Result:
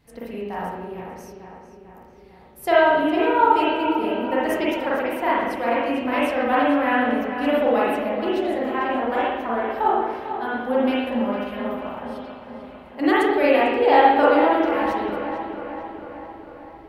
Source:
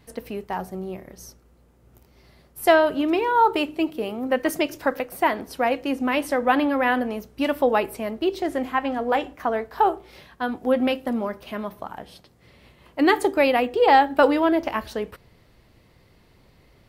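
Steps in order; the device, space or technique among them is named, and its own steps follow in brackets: dub delay into a spring reverb (darkening echo 0.448 s, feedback 61%, low-pass 4300 Hz, level -9.5 dB; spring tank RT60 1 s, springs 39/56 ms, chirp 75 ms, DRR -7.5 dB); gain -7 dB

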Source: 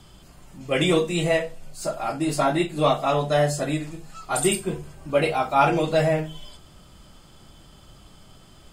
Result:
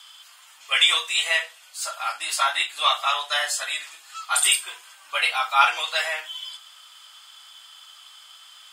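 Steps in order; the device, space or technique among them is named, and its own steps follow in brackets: headphones lying on a table (HPF 1100 Hz 24 dB/oct; bell 3300 Hz +7 dB 0.4 oct); gain +6 dB

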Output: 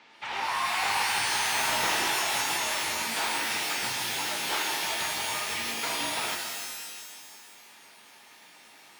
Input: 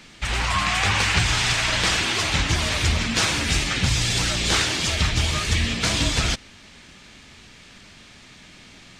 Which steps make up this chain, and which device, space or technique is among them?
intercom (BPF 390–3600 Hz; bell 880 Hz +11.5 dB 0.35 oct; soft clip -14.5 dBFS, distortion -20 dB); 1.53–2.13 low shelf 480 Hz +9 dB; shimmer reverb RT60 1.8 s, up +12 st, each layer -2 dB, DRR 2.5 dB; gain -8 dB

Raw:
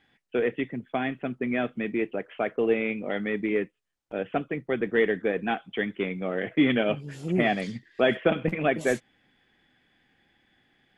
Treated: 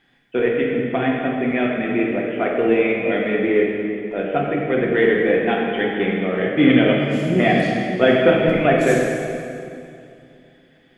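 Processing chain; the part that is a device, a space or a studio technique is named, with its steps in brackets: stairwell (reverb RT60 2.5 s, pre-delay 3 ms, DRR -2.5 dB); gain +4 dB

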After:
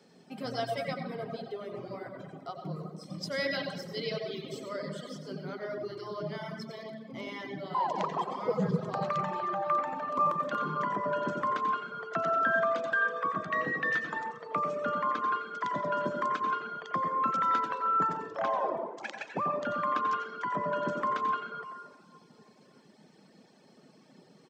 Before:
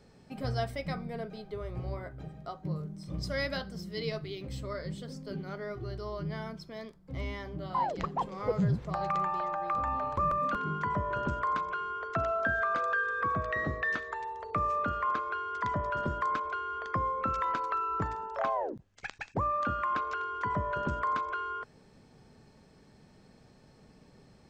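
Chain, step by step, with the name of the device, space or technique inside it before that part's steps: PA in a hall (HPF 170 Hz 24 dB/oct; bell 3200 Hz +4.5 dB 0.22 oct; echo 90 ms -9 dB; reverb RT60 1.9 s, pre-delay 79 ms, DRR 1 dB); HPF 89 Hz; reverb removal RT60 1 s; bell 5800 Hz +2.5 dB

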